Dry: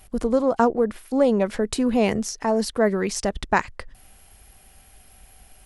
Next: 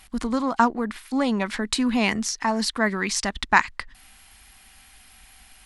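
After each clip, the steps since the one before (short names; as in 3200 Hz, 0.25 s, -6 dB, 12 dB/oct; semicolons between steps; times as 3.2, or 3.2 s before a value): ten-band EQ 125 Hz -5 dB, 250 Hz +6 dB, 500 Hz -10 dB, 1000 Hz +8 dB, 2000 Hz +8 dB, 4000 Hz +9 dB, 8000 Hz +5 dB; gain -4 dB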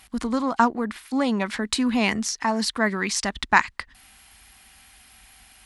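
HPF 41 Hz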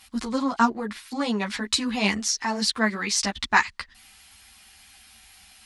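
bell 4900 Hz +6.5 dB 1.8 oct; ensemble effect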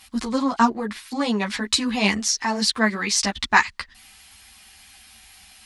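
notch 1400 Hz, Q 25; gain +3 dB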